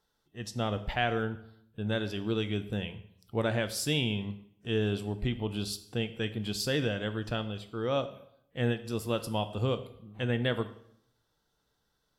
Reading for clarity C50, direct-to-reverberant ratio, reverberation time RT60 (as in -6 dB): 14.0 dB, 10.0 dB, 0.70 s